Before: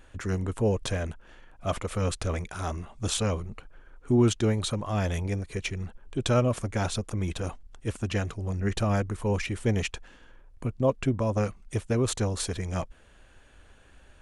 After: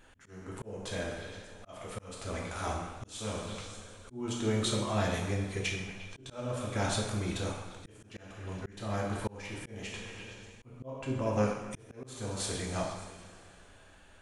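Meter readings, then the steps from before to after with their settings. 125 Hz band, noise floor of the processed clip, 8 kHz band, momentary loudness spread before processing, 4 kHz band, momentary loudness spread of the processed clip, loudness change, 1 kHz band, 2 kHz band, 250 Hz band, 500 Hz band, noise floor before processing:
-9.0 dB, -58 dBFS, -4.5 dB, 11 LU, -3.5 dB, 17 LU, -7.0 dB, -3.5 dB, -3.0 dB, -7.5 dB, -7.0 dB, -55 dBFS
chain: bass shelf 280 Hz -5.5 dB; on a send: repeats whose band climbs or falls 117 ms, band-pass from 1.1 kHz, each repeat 0.7 oct, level -9 dB; on the sum: two-slope reverb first 0.66 s, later 3 s, from -15 dB, DRR -1.5 dB; slow attack 571 ms; trim -3.5 dB

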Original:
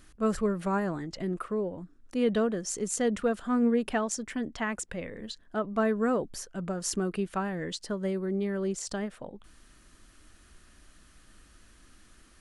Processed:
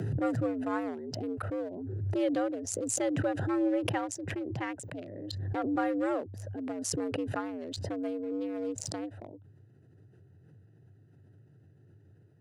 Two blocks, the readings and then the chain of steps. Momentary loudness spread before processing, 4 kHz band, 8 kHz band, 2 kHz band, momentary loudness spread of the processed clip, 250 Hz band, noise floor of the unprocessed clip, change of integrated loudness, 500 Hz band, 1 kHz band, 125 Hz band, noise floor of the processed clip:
11 LU, -2.5 dB, -2.0 dB, -4.0 dB, 10 LU, -2.5 dB, -58 dBFS, -2.5 dB, -3.5 dB, -2.0 dB, +2.5 dB, -60 dBFS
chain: local Wiener filter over 41 samples; frequency shift +89 Hz; swell ahead of each attack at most 28 dB/s; trim -3.5 dB

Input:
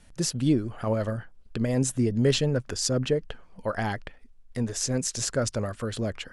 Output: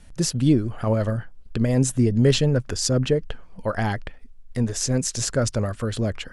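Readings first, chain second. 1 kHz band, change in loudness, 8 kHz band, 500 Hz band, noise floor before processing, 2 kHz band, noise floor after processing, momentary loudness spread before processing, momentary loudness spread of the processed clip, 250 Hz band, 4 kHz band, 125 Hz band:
+3.0 dB, +4.5 dB, +3.0 dB, +3.5 dB, -54 dBFS, +3.0 dB, -44 dBFS, 10 LU, 11 LU, +4.5 dB, +3.0 dB, +6.5 dB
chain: bass shelf 150 Hz +6 dB; trim +3 dB

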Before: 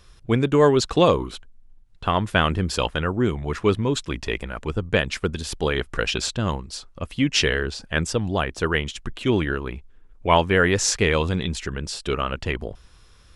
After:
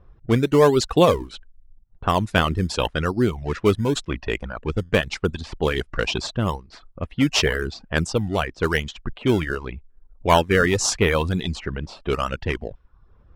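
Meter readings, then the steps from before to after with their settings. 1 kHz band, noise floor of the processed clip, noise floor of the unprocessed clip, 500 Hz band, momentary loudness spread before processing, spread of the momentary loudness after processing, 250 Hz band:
+0.5 dB, -54 dBFS, -51 dBFS, +1.0 dB, 12 LU, 12 LU, +1.0 dB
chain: in parallel at -11 dB: decimation with a swept rate 18×, swing 100% 0.87 Hz; on the sum: level-controlled noise filter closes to 910 Hz, open at -16.5 dBFS; reverb removal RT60 0.61 s

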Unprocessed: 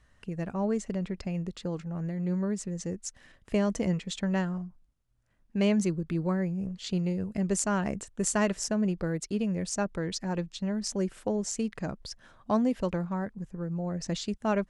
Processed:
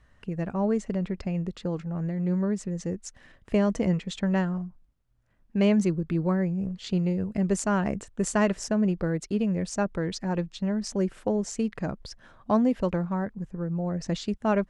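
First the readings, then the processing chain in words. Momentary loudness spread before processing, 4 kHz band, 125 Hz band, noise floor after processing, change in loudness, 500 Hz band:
9 LU, -1.0 dB, +3.5 dB, -62 dBFS, +3.0 dB, +3.5 dB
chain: treble shelf 4.2 kHz -9 dB; trim +3.5 dB

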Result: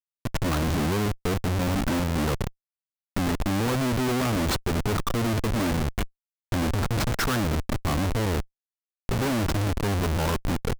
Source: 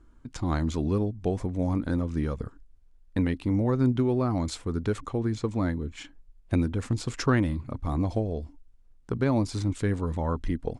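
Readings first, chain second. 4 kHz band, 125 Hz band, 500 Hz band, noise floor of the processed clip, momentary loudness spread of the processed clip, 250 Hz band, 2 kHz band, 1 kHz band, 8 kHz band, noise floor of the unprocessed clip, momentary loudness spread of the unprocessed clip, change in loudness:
+10.5 dB, +1.5 dB, +1.0 dB, under -85 dBFS, 7 LU, +0.5 dB, +7.5 dB, +6.0 dB, +9.5 dB, -56 dBFS, 10 LU, +2.0 dB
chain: high-pass 83 Hz 6 dB/octave; dynamic bell 1.4 kHz, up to +7 dB, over -50 dBFS, Q 1.8; Schmitt trigger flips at -34 dBFS; trim +4.5 dB

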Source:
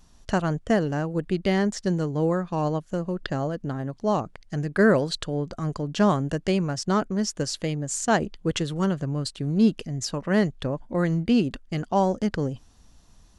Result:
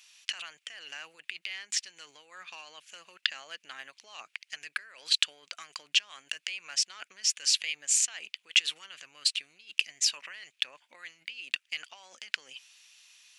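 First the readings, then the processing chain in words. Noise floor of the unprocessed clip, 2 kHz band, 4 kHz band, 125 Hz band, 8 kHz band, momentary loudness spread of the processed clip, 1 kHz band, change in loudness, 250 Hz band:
-55 dBFS, -2.0 dB, +7.0 dB, under -40 dB, +5.0 dB, 21 LU, -21.5 dB, -5.0 dB, under -40 dB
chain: compressor with a negative ratio -29 dBFS, ratio -1; resonant high-pass 2.5 kHz, resonance Q 4

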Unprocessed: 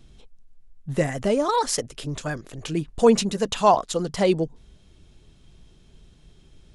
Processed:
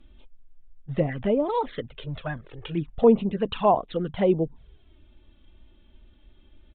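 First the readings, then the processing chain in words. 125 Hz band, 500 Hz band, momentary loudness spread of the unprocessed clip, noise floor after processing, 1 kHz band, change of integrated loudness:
-1.0 dB, -1.5 dB, 13 LU, -56 dBFS, -4.0 dB, -2.0 dB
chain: touch-sensitive flanger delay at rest 3.7 ms, full sweep at -18 dBFS; resampled via 8 kHz; low-pass that closes with the level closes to 1.5 kHz, closed at -18.5 dBFS

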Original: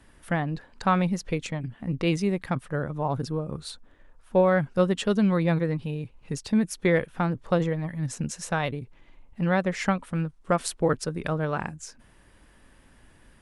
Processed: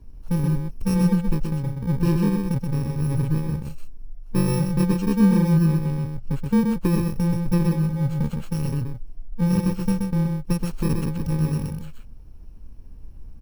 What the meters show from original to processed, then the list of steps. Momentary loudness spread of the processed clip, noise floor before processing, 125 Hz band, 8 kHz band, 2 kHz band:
10 LU, -57 dBFS, +8.0 dB, -1.5 dB, -8.0 dB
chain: bit-reversed sample order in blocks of 64 samples; tilt EQ -4 dB/octave; on a send: delay 127 ms -4.5 dB; on the sum: trim -3 dB

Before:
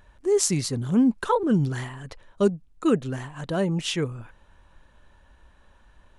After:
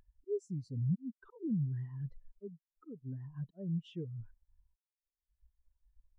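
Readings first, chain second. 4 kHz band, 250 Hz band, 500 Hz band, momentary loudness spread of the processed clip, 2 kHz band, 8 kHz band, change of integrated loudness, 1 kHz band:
under -25 dB, -16.0 dB, -19.0 dB, 16 LU, under -30 dB, under -35 dB, -15.0 dB, under -35 dB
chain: slow attack 784 ms; compression 4:1, threshold -39 dBFS, peak gain reduction 14.5 dB; waveshaping leveller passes 3; spectral contrast expander 2.5:1; trim -3.5 dB

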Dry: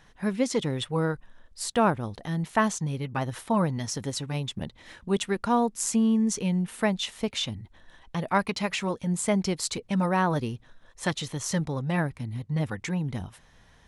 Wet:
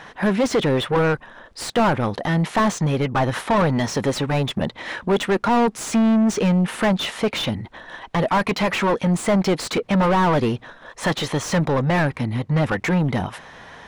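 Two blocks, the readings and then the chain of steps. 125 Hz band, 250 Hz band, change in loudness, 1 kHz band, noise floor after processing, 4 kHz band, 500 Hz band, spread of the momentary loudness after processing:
+7.5 dB, +7.0 dB, +7.0 dB, +7.5 dB, -48 dBFS, +6.0 dB, +9.0 dB, 9 LU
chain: overdrive pedal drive 31 dB, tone 1.2 kHz, clips at -9 dBFS

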